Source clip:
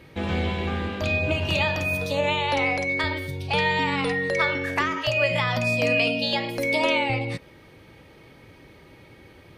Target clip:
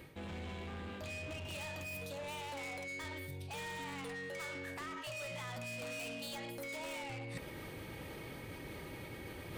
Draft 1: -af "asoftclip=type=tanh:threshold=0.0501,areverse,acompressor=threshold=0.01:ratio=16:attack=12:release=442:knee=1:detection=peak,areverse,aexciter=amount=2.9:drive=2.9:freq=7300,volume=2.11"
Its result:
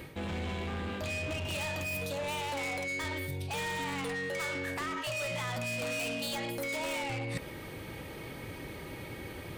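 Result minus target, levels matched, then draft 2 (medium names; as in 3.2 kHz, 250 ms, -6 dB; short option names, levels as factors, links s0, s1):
compression: peak gain reduction -8.5 dB
-af "asoftclip=type=tanh:threshold=0.0501,areverse,acompressor=threshold=0.00355:ratio=16:attack=12:release=442:knee=1:detection=peak,areverse,aexciter=amount=2.9:drive=2.9:freq=7300,volume=2.11"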